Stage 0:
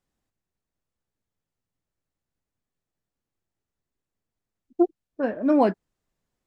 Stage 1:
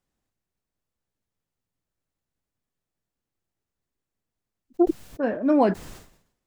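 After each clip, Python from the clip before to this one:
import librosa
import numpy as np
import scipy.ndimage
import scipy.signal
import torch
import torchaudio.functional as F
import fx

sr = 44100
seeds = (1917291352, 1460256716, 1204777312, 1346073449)

y = fx.sustainer(x, sr, db_per_s=86.0)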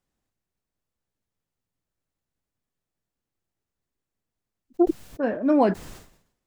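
y = x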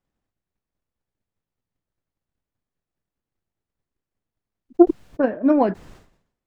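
y = fx.lowpass(x, sr, hz=2600.0, slope=6)
y = fx.transient(y, sr, attack_db=9, sustain_db=-3)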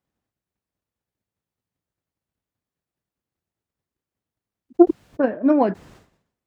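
y = scipy.signal.sosfilt(scipy.signal.butter(2, 62.0, 'highpass', fs=sr, output='sos'), x)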